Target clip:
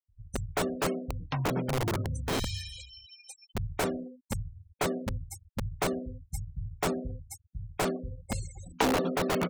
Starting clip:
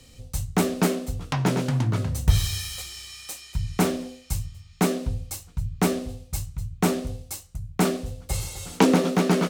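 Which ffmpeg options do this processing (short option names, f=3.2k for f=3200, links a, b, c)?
-filter_complex "[0:a]afftfilt=real='re*gte(hypot(re,im),0.0316)':imag='im*gte(hypot(re,im),0.0316)':win_size=1024:overlap=0.75,acrossover=split=320|1100|2200[a][b][c][d];[a]aeval=exprs='(mod(9.44*val(0)+1,2)-1)/9.44':c=same[e];[e][b][c][d]amix=inputs=4:normalize=0,volume=-5.5dB"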